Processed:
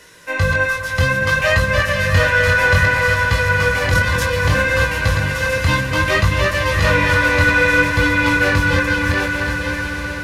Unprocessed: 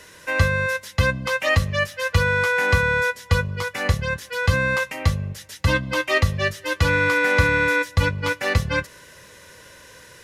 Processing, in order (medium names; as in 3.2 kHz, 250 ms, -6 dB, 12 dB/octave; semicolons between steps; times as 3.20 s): backward echo that repeats 465 ms, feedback 45%, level -4 dB; in parallel at -5 dB: saturation -20 dBFS, distortion -9 dB; 3.82–4.27 s: on the sum: transient shaper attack -4 dB, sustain +10 dB; chorus 0.61 Hz, delay 17 ms, depth 6.9 ms; repeats whose band climbs or falls 304 ms, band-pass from 1.2 kHz, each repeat 0.7 oct, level -5 dB; level rider gain up to 4 dB; on a send: echo with a slow build-up 126 ms, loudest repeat 5, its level -15.5 dB